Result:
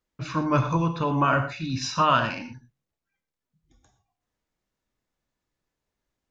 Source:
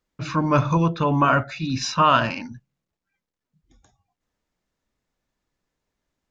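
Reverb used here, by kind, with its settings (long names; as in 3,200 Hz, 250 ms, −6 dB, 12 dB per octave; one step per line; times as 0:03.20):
reverb whose tail is shaped and stops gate 140 ms flat, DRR 7.5 dB
level −4 dB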